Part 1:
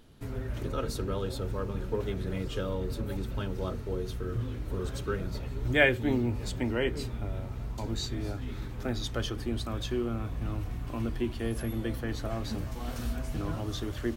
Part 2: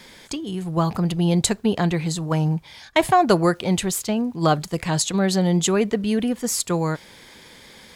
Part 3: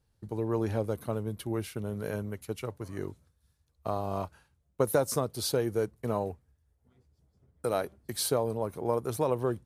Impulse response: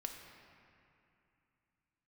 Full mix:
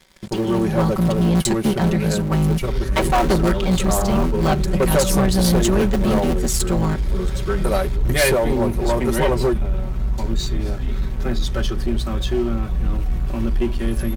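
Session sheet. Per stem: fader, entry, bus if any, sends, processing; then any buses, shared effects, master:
-6.0 dB, 2.40 s, no send, dry
-11.5 dB, 0.00 s, send -18.5 dB, cycle switcher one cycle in 3, muted
-2.5 dB, 0.00 s, no send, low shelf 170 Hz -4 dB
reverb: on, RT60 2.7 s, pre-delay 4 ms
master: low shelf 100 Hz +12 dB; comb 5.3 ms, depth 88%; sample leveller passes 3

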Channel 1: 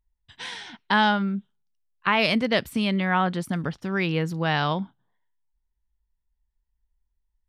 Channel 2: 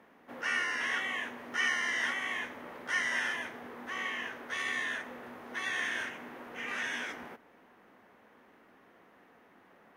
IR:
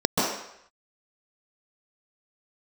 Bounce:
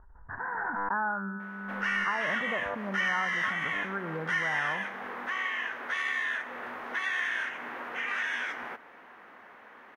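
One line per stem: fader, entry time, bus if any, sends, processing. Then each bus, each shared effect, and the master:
-1.0 dB, 0.00 s, no send, steep low-pass 1600 Hz 72 dB/oct; resonator 99 Hz, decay 2 s, mix 70%; backwards sustainer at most 26 dB/s
-1.5 dB, 1.40 s, no send, dry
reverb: off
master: bell 1500 Hz +14 dB 2.9 oct; compressor 2:1, threshold -35 dBFS, peak gain reduction 11 dB

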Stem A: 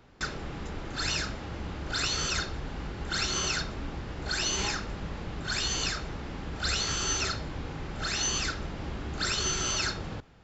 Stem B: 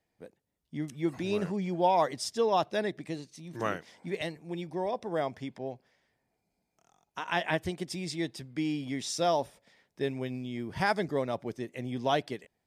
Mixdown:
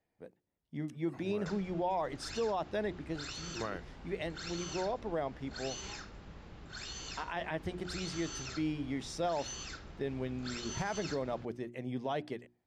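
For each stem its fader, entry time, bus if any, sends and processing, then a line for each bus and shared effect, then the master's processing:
-14.0 dB, 1.25 s, no send, dry
-2.0 dB, 0.00 s, no send, high shelf 3700 Hz -11 dB; notches 60/120/180/240/300/360 Hz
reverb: off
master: limiter -25.5 dBFS, peak gain reduction 8 dB

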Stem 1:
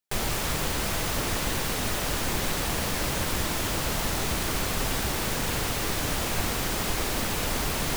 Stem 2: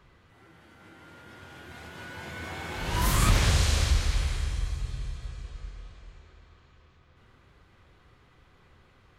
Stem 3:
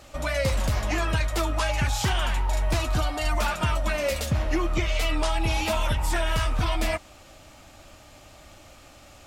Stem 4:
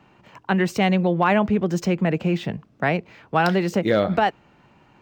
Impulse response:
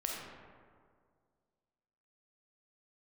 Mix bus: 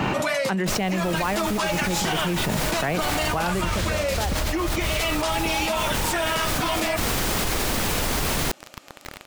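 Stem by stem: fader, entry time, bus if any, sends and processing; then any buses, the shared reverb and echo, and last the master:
-17.5 dB, 0.55 s, no send, dry
-13.5 dB, 0.35 s, no send, notches 50/100/150/200/250/300/350/400/450 Hz; sample gate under -50.5 dBFS
0.0 dB, 0.00 s, no send, HPF 190 Hz 24 dB/oct; upward expander 2.5:1, over -50 dBFS
0.92 s -8 dB -> 1.2 s -19 dB -> 2.05 s -19 dB -> 2.53 s -10.5 dB -> 3.51 s -10.5 dB -> 3.77 s -21.5 dB, 0.00 s, no send, dry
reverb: off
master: fast leveller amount 100%

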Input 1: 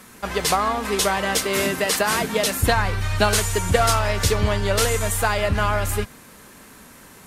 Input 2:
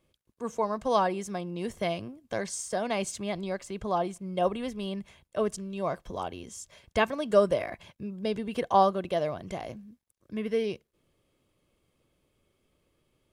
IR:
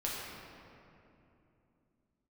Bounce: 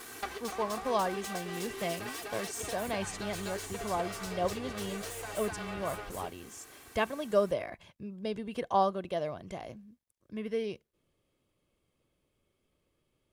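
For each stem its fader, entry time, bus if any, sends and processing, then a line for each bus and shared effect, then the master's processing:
+2.0 dB, 0.00 s, no send, echo send -10.5 dB, minimum comb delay 2.6 ms; HPF 140 Hz 6 dB/oct; compressor 3:1, threshold -36 dBFS, peak gain reduction 15.5 dB; auto duck -11 dB, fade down 0.20 s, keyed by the second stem
-5.0 dB, 0.00 s, no send, no echo send, dry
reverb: off
echo: echo 0.251 s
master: dry

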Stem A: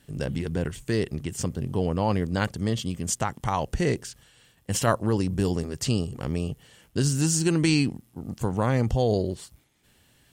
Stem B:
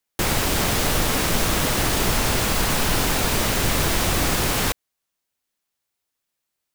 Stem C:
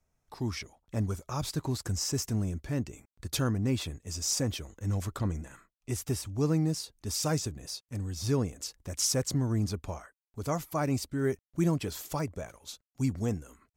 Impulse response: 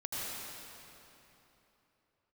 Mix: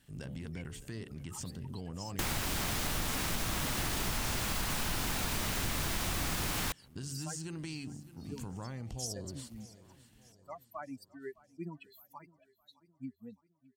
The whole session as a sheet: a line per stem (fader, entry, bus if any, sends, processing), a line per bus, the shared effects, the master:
-7.0 dB, 0.00 s, no send, echo send -17.5 dB, de-hum 71.99 Hz, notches 11; compressor 6:1, threshold -30 dBFS, peak gain reduction 13.5 dB; transient shaper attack -3 dB, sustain +5 dB
-3.5 dB, 2.00 s, no send, no echo send, dry
-5.0 dB, 0.00 s, no send, echo send -21.5 dB, per-bin expansion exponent 3; HPF 260 Hz 12 dB/oct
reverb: off
echo: feedback echo 0.612 s, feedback 49%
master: bell 470 Hz -6 dB 0.97 oct; compressor 2.5:1, threshold -35 dBFS, peak gain reduction 10.5 dB

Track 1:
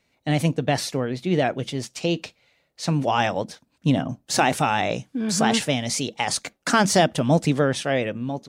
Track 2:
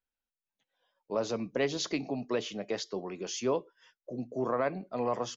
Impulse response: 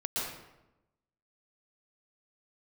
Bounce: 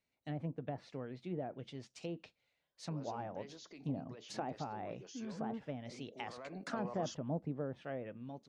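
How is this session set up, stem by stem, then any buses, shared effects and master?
-19.0 dB, 0.00 s, no send, treble ducked by the level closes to 880 Hz, closed at -17 dBFS
6.24 s -14 dB -> 6.55 s -5 dB, 1.80 s, no send, harmonic-percussive split harmonic -3 dB; limiter -31 dBFS, peak gain reduction 11.5 dB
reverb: off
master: dry

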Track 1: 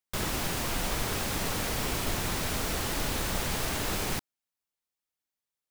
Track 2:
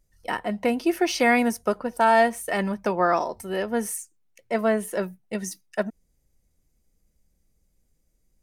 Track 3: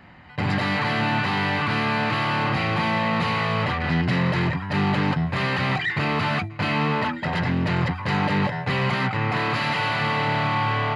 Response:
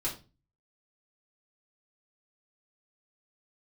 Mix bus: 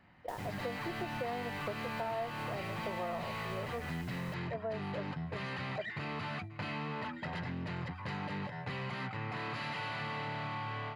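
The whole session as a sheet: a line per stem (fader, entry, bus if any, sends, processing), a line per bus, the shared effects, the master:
-14.0 dB, 0.15 s, no send, dry
-0.5 dB, 0.00 s, no send, band-pass 580 Hz, Q 1.7
-15.5 dB, 0.00 s, no send, AGC gain up to 12 dB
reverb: off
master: compressor 3:1, threshold -40 dBFS, peak gain reduction 17 dB

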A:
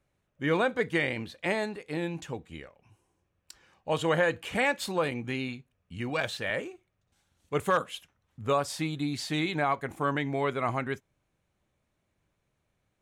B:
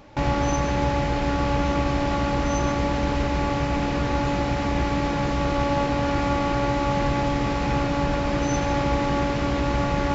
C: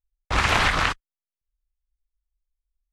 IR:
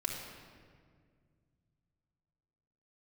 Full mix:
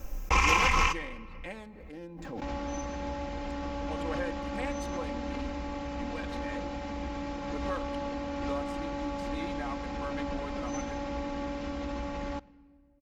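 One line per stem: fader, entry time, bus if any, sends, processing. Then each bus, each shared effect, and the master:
-14.5 dB, 0.00 s, send -16.5 dB, Wiener smoothing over 15 samples
-16.0 dB, 2.25 s, send -21 dB, dry
-5.0 dB, 0.00 s, send -15 dB, ripple EQ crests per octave 0.77, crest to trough 14 dB; compressor, threshold -19 dBFS, peak gain reduction 7 dB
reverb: on, RT60 2.0 s, pre-delay 3 ms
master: comb 3.8 ms, depth 67%; backwards sustainer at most 33 dB/s

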